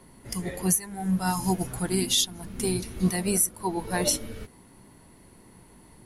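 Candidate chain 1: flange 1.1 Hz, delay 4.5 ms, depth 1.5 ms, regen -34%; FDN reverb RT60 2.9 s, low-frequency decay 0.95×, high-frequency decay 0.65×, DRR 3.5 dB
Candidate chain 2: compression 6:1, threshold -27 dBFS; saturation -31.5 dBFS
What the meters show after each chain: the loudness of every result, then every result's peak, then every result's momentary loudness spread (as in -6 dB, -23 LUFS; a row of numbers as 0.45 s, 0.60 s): -29.0 LUFS, -36.5 LUFS; -13.0 dBFS, -31.5 dBFS; 13 LU, 18 LU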